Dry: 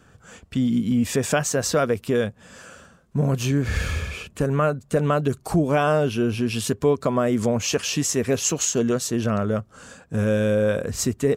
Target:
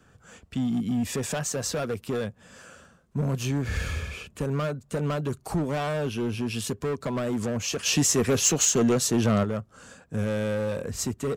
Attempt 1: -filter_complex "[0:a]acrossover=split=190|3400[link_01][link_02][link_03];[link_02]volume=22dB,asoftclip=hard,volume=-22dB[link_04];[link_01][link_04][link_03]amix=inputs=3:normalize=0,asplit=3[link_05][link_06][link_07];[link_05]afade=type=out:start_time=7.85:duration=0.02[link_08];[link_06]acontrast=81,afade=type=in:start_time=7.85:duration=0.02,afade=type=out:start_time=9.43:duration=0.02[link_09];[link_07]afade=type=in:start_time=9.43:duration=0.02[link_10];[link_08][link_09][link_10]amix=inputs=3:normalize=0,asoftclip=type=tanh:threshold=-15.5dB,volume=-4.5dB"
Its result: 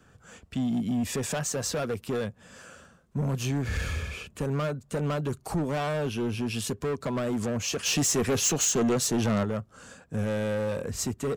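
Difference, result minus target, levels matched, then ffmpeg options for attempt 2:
soft clipping: distortion +15 dB
-filter_complex "[0:a]acrossover=split=190|3400[link_01][link_02][link_03];[link_02]volume=22dB,asoftclip=hard,volume=-22dB[link_04];[link_01][link_04][link_03]amix=inputs=3:normalize=0,asplit=3[link_05][link_06][link_07];[link_05]afade=type=out:start_time=7.85:duration=0.02[link_08];[link_06]acontrast=81,afade=type=in:start_time=7.85:duration=0.02,afade=type=out:start_time=9.43:duration=0.02[link_09];[link_07]afade=type=in:start_time=9.43:duration=0.02[link_10];[link_08][link_09][link_10]amix=inputs=3:normalize=0,asoftclip=type=tanh:threshold=-5.5dB,volume=-4.5dB"

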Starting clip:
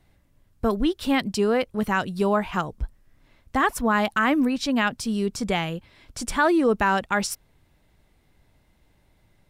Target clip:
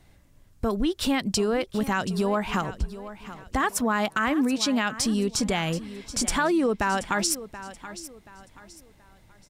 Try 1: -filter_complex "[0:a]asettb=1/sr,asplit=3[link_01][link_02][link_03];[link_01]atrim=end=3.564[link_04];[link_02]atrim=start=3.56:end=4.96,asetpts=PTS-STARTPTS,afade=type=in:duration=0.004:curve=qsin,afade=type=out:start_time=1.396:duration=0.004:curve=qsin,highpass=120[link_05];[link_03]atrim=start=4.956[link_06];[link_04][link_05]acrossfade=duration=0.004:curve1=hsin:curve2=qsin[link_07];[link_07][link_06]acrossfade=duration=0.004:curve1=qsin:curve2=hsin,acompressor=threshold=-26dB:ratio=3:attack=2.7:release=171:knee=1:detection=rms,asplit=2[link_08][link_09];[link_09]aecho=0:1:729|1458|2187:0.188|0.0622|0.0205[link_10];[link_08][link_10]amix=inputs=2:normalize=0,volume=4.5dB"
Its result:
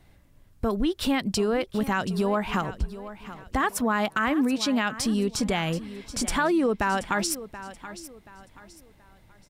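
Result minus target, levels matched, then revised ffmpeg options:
8,000 Hz band −3.5 dB
-filter_complex "[0:a]asettb=1/sr,asplit=3[link_01][link_02][link_03];[link_01]atrim=end=3.564[link_04];[link_02]atrim=start=3.56:end=4.96,asetpts=PTS-STARTPTS,afade=type=in:duration=0.004:curve=qsin,afade=type=out:start_time=1.396:duration=0.004:curve=qsin,highpass=120[link_05];[link_03]atrim=start=4.956[link_06];[link_04][link_05]acrossfade=duration=0.004:curve1=hsin:curve2=qsin[link_07];[link_07][link_06]acrossfade=duration=0.004:curve1=qsin:curve2=hsin,acompressor=threshold=-26dB:ratio=3:attack=2.7:release=171:knee=1:detection=rms,equalizer=frequency=6800:width_type=o:width=1.1:gain=4.5,asplit=2[link_08][link_09];[link_09]aecho=0:1:729|1458|2187:0.188|0.0622|0.0205[link_10];[link_08][link_10]amix=inputs=2:normalize=0,volume=4.5dB"

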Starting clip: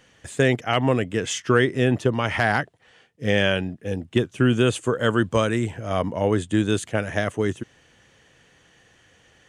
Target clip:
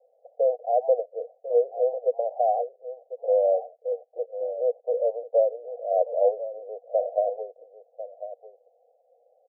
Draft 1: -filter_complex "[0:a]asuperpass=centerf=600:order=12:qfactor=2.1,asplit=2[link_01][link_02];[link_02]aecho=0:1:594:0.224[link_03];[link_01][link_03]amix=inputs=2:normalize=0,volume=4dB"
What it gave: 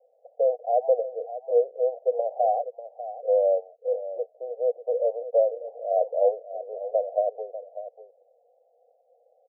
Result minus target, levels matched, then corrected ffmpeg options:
echo 453 ms early
-filter_complex "[0:a]asuperpass=centerf=600:order=12:qfactor=2.1,asplit=2[link_01][link_02];[link_02]aecho=0:1:1047:0.224[link_03];[link_01][link_03]amix=inputs=2:normalize=0,volume=4dB"

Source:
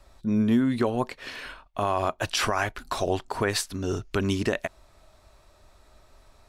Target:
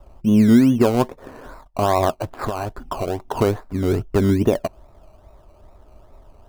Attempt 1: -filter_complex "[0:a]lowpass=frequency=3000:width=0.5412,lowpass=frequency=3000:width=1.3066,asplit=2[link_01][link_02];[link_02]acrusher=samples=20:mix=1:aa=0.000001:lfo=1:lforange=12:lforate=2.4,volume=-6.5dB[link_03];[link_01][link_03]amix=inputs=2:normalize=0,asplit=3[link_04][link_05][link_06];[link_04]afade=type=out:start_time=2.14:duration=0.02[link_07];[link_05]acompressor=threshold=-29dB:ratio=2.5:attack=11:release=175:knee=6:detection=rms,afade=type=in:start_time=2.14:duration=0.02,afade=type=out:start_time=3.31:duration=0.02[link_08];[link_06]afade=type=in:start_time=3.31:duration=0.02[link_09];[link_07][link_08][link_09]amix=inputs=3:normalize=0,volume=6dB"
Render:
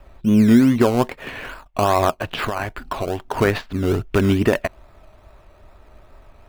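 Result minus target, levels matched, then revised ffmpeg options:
4,000 Hz band +4.0 dB
-filter_complex "[0:a]lowpass=frequency=1100:width=0.5412,lowpass=frequency=1100:width=1.3066,asplit=2[link_01][link_02];[link_02]acrusher=samples=20:mix=1:aa=0.000001:lfo=1:lforange=12:lforate=2.4,volume=-6.5dB[link_03];[link_01][link_03]amix=inputs=2:normalize=0,asplit=3[link_04][link_05][link_06];[link_04]afade=type=out:start_time=2.14:duration=0.02[link_07];[link_05]acompressor=threshold=-29dB:ratio=2.5:attack=11:release=175:knee=6:detection=rms,afade=type=in:start_time=2.14:duration=0.02,afade=type=out:start_time=3.31:duration=0.02[link_08];[link_06]afade=type=in:start_time=3.31:duration=0.02[link_09];[link_07][link_08][link_09]amix=inputs=3:normalize=0,volume=6dB"

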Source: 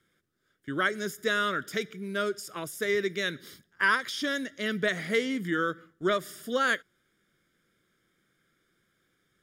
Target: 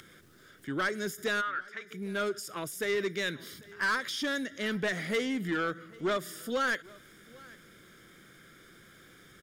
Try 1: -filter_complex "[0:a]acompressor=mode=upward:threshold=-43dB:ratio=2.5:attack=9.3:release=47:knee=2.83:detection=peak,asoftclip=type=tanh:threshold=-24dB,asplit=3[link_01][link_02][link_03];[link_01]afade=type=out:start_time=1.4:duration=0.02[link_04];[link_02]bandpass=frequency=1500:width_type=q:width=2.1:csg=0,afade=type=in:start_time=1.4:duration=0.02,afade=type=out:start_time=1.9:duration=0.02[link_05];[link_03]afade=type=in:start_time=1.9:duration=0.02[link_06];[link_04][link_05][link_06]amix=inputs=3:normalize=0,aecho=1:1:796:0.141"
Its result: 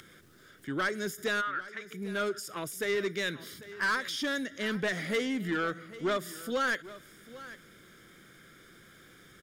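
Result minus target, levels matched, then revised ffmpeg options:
echo-to-direct +6.5 dB
-filter_complex "[0:a]acompressor=mode=upward:threshold=-43dB:ratio=2.5:attack=9.3:release=47:knee=2.83:detection=peak,asoftclip=type=tanh:threshold=-24dB,asplit=3[link_01][link_02][link_03];[link_01]afade=type=out:start_time=1.4:duration=0.02[link_04];[link_02]bandpass=frequency=1500:width_type=q:width=2.1:csg=0,afade=type=in:start_time=1.4:duration=0.02,afade=type=out:start_time=1.9:duration=0.02[link_05];[link_03]afade=type=in:start_time=1.9:duration=0.02[link_06];[link_04][link_05][link_06]amix=inputs=3:normalize=0,aecho=1:1:796:0.0668"

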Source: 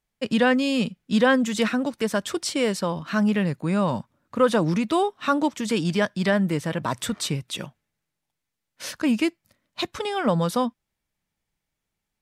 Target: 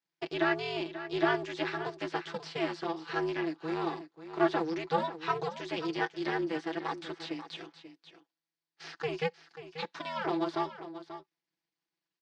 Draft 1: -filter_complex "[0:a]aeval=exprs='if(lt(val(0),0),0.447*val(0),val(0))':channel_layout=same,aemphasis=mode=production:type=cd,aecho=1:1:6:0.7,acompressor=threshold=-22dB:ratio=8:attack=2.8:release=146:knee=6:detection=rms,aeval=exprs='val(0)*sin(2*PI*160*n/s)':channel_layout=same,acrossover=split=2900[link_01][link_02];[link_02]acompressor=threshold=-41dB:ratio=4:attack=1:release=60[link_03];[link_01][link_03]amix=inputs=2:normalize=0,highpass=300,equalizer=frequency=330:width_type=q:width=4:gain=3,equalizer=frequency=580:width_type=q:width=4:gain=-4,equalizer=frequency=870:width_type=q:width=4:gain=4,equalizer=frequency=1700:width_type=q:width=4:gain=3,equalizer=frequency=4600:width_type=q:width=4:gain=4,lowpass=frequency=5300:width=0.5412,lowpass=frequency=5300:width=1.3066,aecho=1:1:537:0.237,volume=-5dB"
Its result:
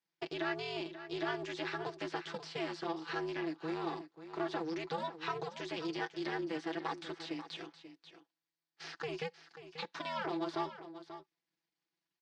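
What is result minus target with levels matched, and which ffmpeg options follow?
downward compressor: peak gain reduction +12.5 dB
-filter_complex "[0:a]aeval=exprs='if(lt(val(0),0),0.447*val(0),val(0))':channel_layout=same,aemphasis=mode=production:type=cd,aecho=1:1:6:0.7,aeval=exprs='val(0)*sin(2*PI*160*n/s)':channel_layout=same,acrossover=split=2900[link_01][link_02];[link_02]acompressor=threshold=-41dB:ratio=4:attack=1:release=60[link_03];[link_01][link_03]amix=inputs=2:normalize=0,highpass=300,equalizer=frequency=330:width_type=q:width=4:gain=3,equalizer=frequency=580:width_type=q:width=4:gain=-4,equalizer=frequency=870:width_type=q:width=4:gain=4,equalizer=frequency=1700:width_type=q:width=4:gain=3,equalizer=frequency=4600:width_type=q:width=4:gain=4,lowpass=frequency=5300:width=0.5412,lowpass=frequency=5300:width=1.3066,aecho=1:1:537:0.237,volume=-5dB"

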